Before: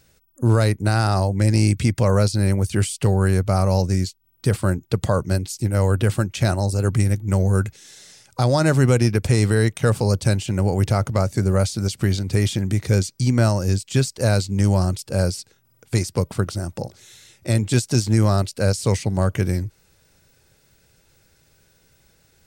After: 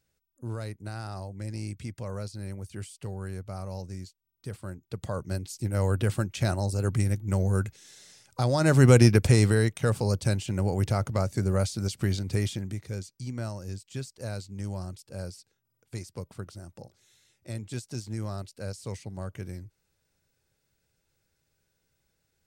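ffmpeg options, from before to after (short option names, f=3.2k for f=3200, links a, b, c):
-af "volume=1dB,afade=t=in:st=4.76:d=1.1:silence=0.266073,afade=t=in:st=8.57:d=0.42:silence=0.398107,afade=t=out:st=8.99:d=0.71:silence=0.398107,afade=t=out:st=12.3:d=0.56:silence=0.316228"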